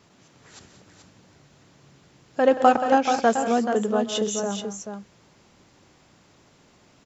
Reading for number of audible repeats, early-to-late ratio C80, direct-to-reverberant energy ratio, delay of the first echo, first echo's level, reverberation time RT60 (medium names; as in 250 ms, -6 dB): 4, no reverb, no reverb, 130 ms, -15.0 dB, no reverb